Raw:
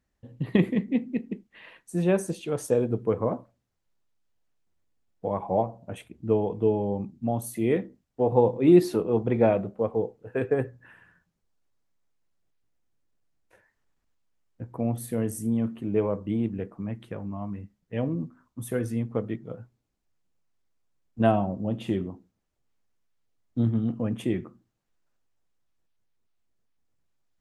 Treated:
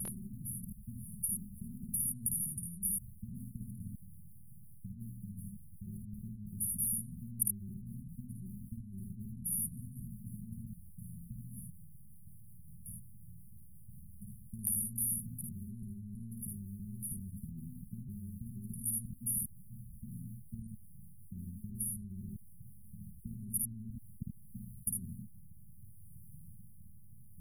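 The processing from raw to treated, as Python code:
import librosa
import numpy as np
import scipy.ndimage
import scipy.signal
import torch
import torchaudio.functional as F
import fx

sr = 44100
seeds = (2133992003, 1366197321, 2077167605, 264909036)

p1 = fx.block_reorder(x, sr, ms=323.0, group=3)
p2 = fx.low_shelf(p1, sr, hz=64.0, db=5.0)
p3 = fx.over_compress(p2, sr, threshold_db=-33.0, ratio=-1.0)
p4 = fx.rotary_switch(p3, sr, hz=5.5, then_hz=0.65, switch_at_s=23.56)
p5 = fx.brickwall_bandstop(p4, sr, low_hz=220.0, high_hz=9300.0)
p6 = p5 + fx.room_early_taps(p5, sr, ms=(53, 77), db=(-4.0, -5.5), dry=0)
p7 = fx.spectral_comp(p6, sr, ratio=10.0)
y = p7 * librosa.db_to_amplitude(6.5)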